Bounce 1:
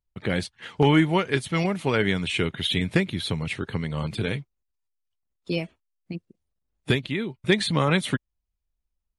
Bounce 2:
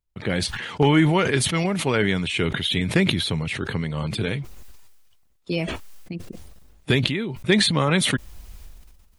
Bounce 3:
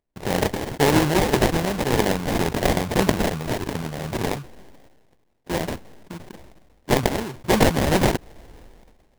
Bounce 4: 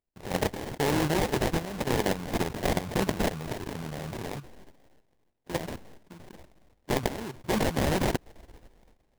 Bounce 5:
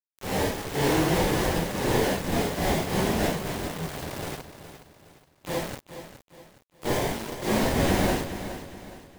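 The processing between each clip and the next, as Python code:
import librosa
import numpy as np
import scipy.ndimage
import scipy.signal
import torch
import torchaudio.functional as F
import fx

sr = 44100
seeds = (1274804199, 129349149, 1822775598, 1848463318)

y1 = fx.sustainer(x, sr, db_per_s=37.0)
y1 = y1 * 10.0 ** (1.0 / 20.0)
y2 = fx.low_shelf(y1, sr, hz=450.0, db=-11.5)
y2 = fx.sample_hold(y2, sr, seeds[0], rate_hz=1300.0, jitter_pct=20)
y2 = y2 * 10.0 ** (5.5 / 20.0)
y3 = fx.level_steps(y2, sr, step_db=11)
y3 = y3 * 10.0 ** (-3.0 / 20.0)
y4 = fx.phase_scramble(y3, sr, seeds[1], window_ms=200)
y4 = np.where(np.abs(y4) >= 10.0 ** (-35.0 / 20.0), y4, 0.0)
y4 = fx.echo_feedback(y4, sr, ms=416, feedback_pct=38, wet_db=-11.5)
y4 = y4 * 10.0 ** (3.0 / 20.0)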